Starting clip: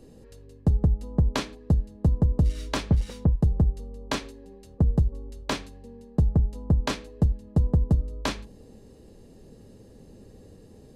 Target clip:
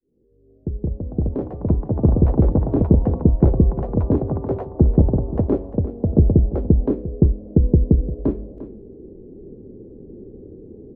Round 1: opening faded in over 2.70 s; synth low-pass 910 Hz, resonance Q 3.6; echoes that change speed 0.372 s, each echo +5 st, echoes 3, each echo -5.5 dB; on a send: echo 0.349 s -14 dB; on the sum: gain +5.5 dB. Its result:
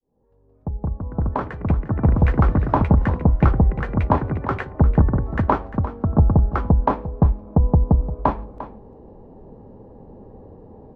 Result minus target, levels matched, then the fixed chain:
1000 Hz band +13.5 dB
opening faded in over 2.70 s; synth low-pass 370 Hz, resonance Q 3.6; echoes that change speed 0.372 s, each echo +5 st, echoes 3, each echo -5.5 dB; on a send: echo 0.349 s -14 dB; on the sum: gain +5.5 dB

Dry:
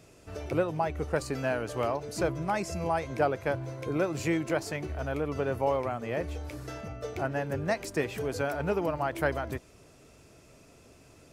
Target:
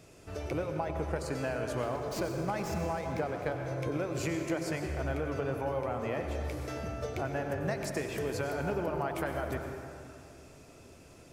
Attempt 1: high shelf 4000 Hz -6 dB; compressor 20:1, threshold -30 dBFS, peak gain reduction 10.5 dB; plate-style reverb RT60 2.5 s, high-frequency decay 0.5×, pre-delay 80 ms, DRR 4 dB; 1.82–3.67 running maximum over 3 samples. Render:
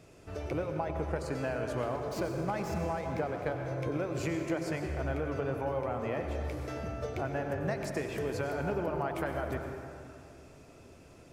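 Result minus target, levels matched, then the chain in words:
8000 Hz band -4.5 dB
compressor 20:1, threshold -30 dBFS, peak gain reduction 11 dB; plate-style reverb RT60 2.5 s, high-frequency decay 0.5×, pre-delay 80 ms, DRR 4 dB; 1.82–3.67 running maximum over 3 samples

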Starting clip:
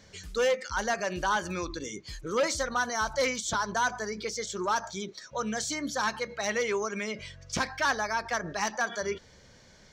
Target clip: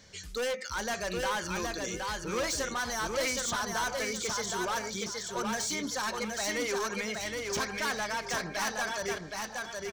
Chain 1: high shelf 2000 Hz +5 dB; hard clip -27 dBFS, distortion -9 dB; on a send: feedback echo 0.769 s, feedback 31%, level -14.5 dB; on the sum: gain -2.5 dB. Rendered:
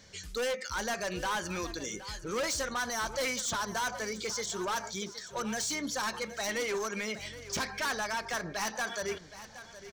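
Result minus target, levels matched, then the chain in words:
echo-to-direct -11 dB
high shelf 2000 Hz +5 dB; hard clip -27 dBFS, distortion -9 dB; on a send: feedback echo 0.769 s, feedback 31%, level -3.5 dB; on the sum: gain -2.5 dB

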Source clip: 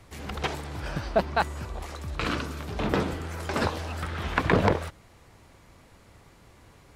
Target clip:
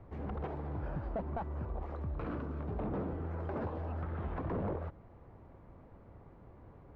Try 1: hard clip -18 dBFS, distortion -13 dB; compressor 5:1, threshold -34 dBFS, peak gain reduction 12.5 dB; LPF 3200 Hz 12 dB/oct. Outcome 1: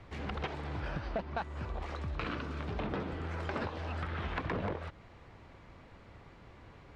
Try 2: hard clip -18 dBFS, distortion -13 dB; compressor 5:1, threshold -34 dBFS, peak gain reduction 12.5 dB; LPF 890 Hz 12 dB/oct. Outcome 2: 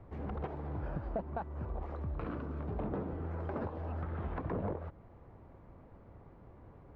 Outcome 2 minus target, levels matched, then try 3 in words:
hard clip: distortion -6 dB
hard clip -25 dBFS, distortion -6 dB; compressor 5:1, threshold -34 dBFS, peak gain reduction 7 dB; LPF 890 Hz 12 dB/oct

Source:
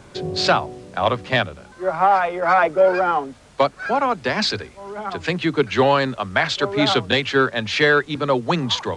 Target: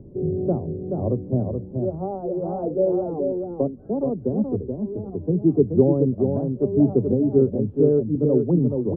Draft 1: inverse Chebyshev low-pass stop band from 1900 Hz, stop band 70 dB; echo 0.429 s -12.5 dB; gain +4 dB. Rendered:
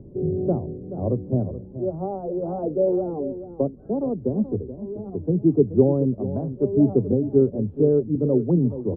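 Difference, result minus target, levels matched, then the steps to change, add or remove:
echo-to-direct -7.5 dB
change: echo 0.429 s -5 dB

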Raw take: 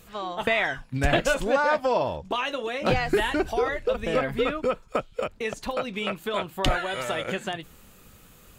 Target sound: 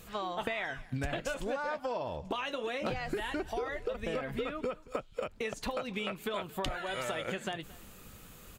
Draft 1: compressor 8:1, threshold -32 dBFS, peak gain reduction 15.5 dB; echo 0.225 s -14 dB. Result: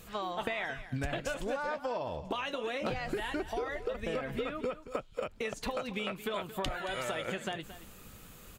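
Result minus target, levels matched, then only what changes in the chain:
echo-to-direct +7 dB
change: echo 0.225 s -21 dB

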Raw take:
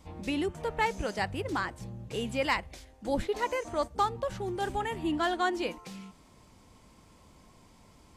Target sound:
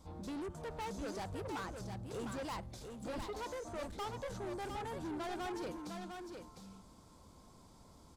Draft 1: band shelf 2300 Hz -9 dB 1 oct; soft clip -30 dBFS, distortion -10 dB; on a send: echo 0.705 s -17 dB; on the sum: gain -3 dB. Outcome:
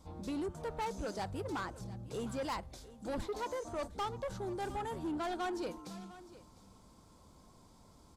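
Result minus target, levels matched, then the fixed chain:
echo-to-direct -11 dB; soft clip: distortion -5 dB
band shelf 2300 Hz -9 dB 1 oct; soft clip -36.5 dBFS, distortion -5 dB; on a send: echo 0.705 s -6 dB; on the sum: gain -3 dB

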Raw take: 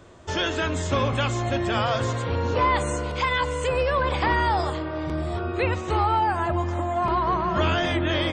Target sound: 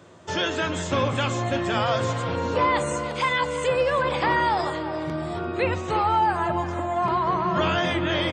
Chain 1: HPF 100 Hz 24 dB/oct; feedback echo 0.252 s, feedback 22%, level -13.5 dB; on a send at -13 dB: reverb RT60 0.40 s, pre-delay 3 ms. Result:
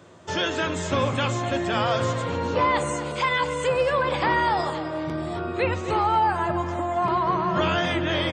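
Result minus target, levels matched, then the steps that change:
echo 93 ms early
change: feedback echo 0.345 s, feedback 22%, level -13.5 dB

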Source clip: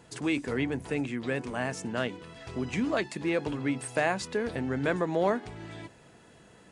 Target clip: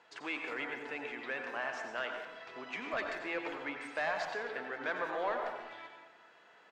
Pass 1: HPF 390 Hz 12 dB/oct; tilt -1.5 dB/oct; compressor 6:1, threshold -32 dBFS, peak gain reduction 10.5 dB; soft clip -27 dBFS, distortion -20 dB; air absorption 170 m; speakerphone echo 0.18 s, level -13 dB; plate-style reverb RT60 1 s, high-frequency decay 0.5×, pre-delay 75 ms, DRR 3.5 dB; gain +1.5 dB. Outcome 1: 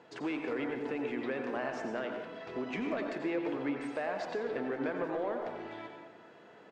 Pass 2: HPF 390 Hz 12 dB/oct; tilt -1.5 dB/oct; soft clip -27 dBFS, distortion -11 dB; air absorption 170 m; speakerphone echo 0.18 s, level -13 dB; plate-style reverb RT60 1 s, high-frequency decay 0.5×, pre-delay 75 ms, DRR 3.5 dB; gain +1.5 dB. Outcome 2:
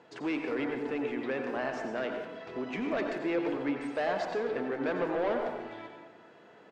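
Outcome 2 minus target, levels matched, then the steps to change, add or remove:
1000 Hz band -3.0 dB
change: HPF 1000 Hz 12 dB/oct

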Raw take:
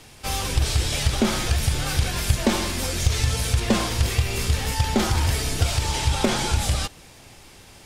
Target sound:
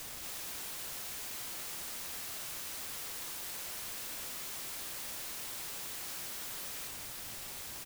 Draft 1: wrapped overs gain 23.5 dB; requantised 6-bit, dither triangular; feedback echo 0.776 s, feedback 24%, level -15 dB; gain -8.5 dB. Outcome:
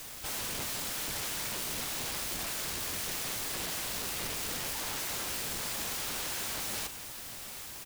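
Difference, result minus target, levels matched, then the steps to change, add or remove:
wrapped overs: distortion -26 dB
change: wrapped overs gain 32.5 dB

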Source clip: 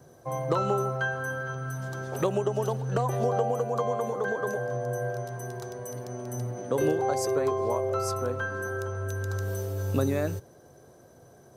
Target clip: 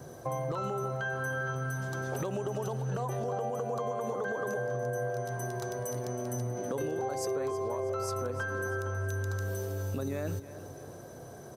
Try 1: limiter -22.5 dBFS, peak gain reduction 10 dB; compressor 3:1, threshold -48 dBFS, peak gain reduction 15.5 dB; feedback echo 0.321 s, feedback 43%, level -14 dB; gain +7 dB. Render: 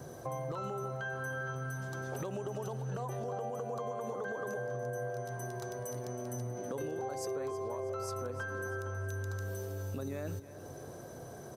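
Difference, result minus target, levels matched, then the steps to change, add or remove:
compressor: peak gain reduction +4.5 dB
change: compressor 3:1, threshold -41 dBFS, peak gain reduction 11 dB

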